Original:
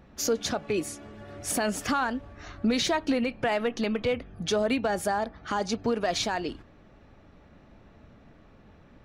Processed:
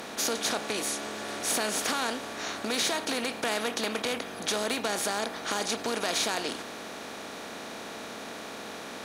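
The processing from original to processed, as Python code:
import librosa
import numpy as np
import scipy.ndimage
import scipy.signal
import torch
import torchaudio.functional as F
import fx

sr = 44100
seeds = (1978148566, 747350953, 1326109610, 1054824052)

y = fx.bin_compress(x, sr, power=0.4)
y = fx.highpass(y, sr, hz=360.0, slope=6)
y = fx.high_shelf(y, sr, hz=2700.0, db=7.5)
y = y * 10.0 ** (-8.5 / 20.0)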